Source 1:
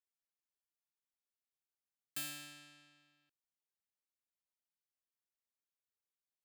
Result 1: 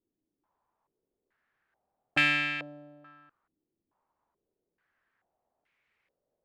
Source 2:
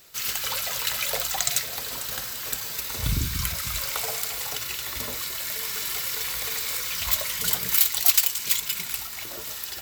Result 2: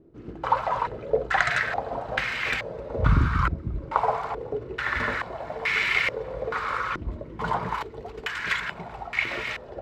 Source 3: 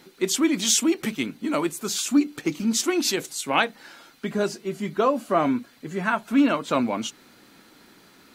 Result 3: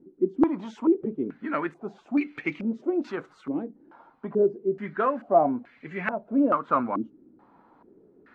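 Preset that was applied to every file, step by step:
step-sequenced low-pass 2.3 Hz 320–2200 Hz; normalise loudness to -27 LUFS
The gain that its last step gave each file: +19.0 dB, +6.0 dB, -6.0 dB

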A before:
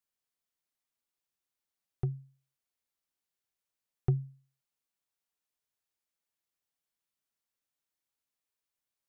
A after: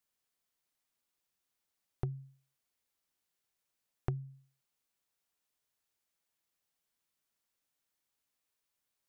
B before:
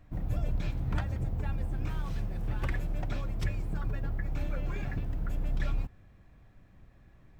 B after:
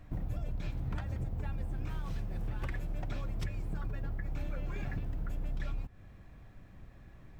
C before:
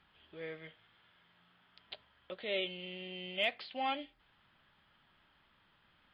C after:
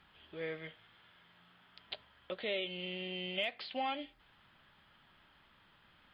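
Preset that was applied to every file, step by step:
compression 5:1, threshold -37 dBFS; trim +4 dB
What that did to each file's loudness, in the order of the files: -6.5 LU, -4.5 LU, -1.0 LU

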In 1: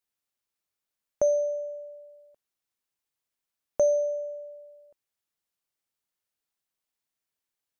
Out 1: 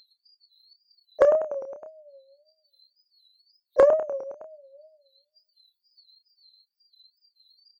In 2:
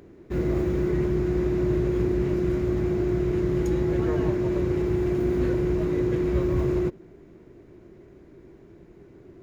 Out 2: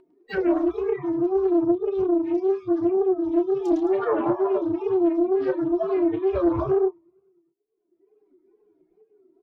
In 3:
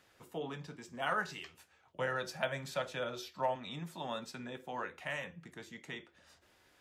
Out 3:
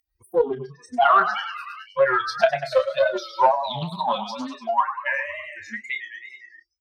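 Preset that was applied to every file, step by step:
expander on every frequency bin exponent 3; high-pass 260 Hz 6 dB/octave; high-order bell 730 Hz +11.5 dB 2.3 oct; compression 5:1, threshold -30 dBFS; on a send: feedback delay 102 ms, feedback 51%, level -10 dB; on the sum: wow and flutter 140 cents; in parallel at -3 dB: saturation -26.5 dBFS; on the sum: doubling 29 ms -8.5 dB; spectral noise reduction 29 dB; upward compressor, threshold -33 dBFS; Savitzky-Golay filter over 15 samples; loudspeaker Doppler distortion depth 0.26 ms; normalise loudness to -23 LUFS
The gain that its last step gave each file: +9.0 dB, +8.5 dB, +12.5 dB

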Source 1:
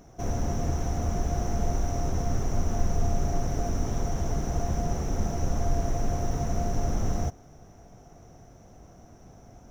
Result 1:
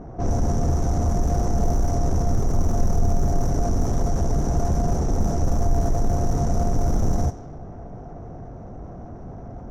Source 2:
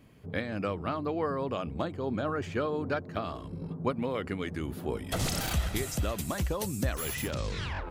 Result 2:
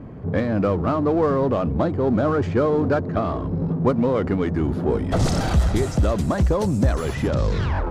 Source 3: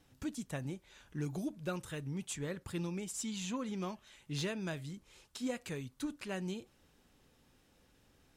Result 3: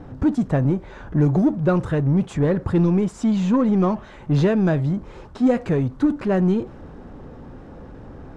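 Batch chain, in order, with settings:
power-law waveshaper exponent 0.7; peaking EQ 2.7 kHz -12 dB 1.7 oct; level-controlled noise filter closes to 1.6 kHz, open at -18.5 dBFS; peak normalisation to -9 dBFS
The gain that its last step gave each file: +3.5 dB, +9.5 dB, +19.0 dB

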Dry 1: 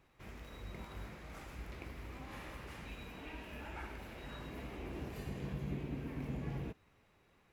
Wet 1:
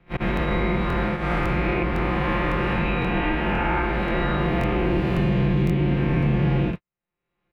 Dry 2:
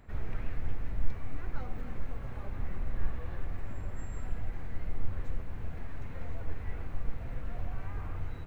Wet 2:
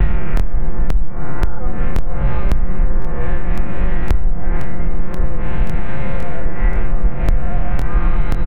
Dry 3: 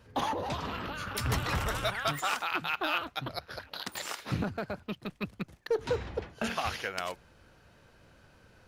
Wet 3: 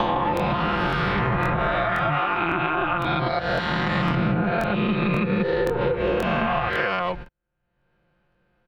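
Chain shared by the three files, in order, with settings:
reverse spectral sustain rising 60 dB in 1.89 s; low-pass that closes with the level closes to 1.4 kHz, closed at -21.5 dBFS; gate -46 dBFS, range -53 dB; treble shelf 3.3 kHz +9.5 dB; comb 5.7 ms, depth 83%; slow attack 192 ms; compression, threshold -28 dBFS; distance through air 490 m; crackling interface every 0.53 s, samples 1024, repeat, from 0.35 s; three bands compressed up and down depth 100%; normalise loudness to -23 LUFS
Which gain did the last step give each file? +17.0 dB, +19.5 dB, +10.5 dB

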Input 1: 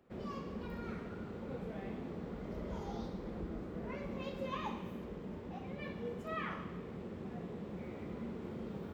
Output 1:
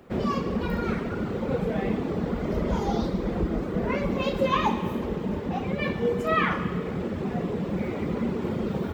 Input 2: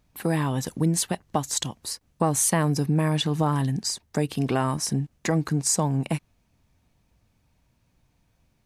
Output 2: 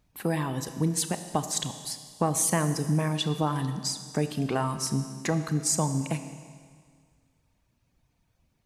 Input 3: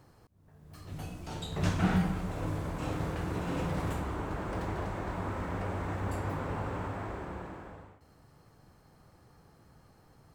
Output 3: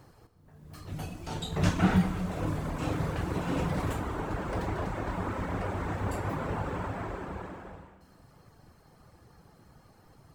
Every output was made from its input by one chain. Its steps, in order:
reverb removal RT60 0.78 s; Schroeder reverb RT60 1.9 s, combs from 26 ms, DRR 9 dB; peak normalisation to -12 dBFS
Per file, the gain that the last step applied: +17.5 dB, -2.5 dB, +4.0 dB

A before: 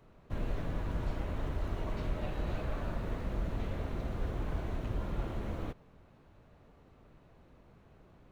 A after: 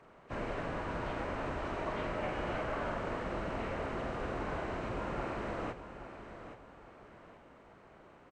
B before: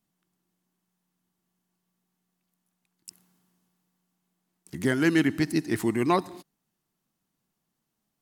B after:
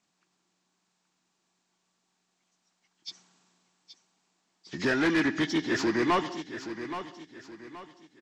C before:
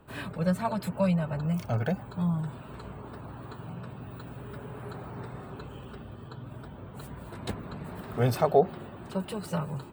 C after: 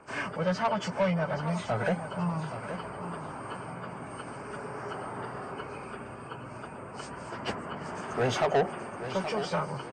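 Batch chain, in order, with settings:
knee-point frequency compression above 1.6 kHz 1.5:1; overdrive pedal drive 22 dB, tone 4.2 kHz, clips at -9.5 dBFS; feedback delay 824 ms, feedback 36%, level -11 dB; trim -7 dB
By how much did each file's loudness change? 0.0 LU, -3.0 LU, -2.0 LU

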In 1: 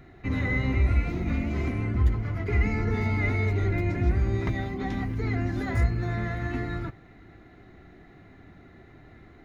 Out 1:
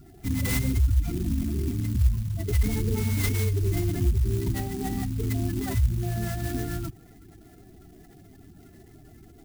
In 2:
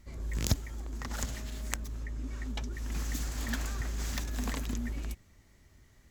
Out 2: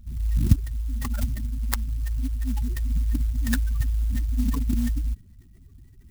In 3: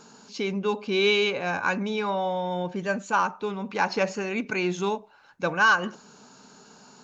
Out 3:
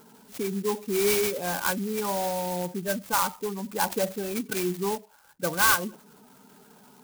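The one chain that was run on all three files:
spectral gate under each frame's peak -15 dB strong; sampling jitter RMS 0.092 ms; normalise loudness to -27 LUFS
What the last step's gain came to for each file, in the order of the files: +1.0 dB, +11.5 dB, -1.0 dB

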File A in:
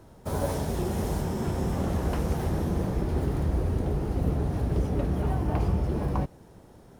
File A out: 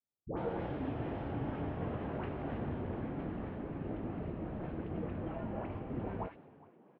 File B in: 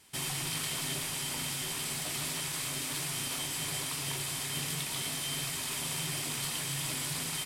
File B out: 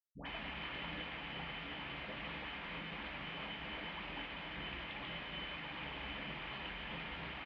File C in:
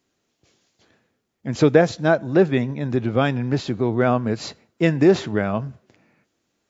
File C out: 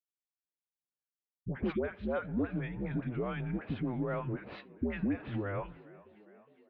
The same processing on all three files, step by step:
gate -40 dBFS, range -45 dB; compression, threshold -26 dBFS; phase dispersion highs, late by 111 ms, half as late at 910 Hz; mistuned SSB -95 Hz 190–3000 Hz; on a send: frequency-shifting echo 411 ms, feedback 61%, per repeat +47 Hz, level -21 dB; on the sum: trim -3.5 dB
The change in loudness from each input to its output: -11.0 LU, -10.5 LU, -15.5 LU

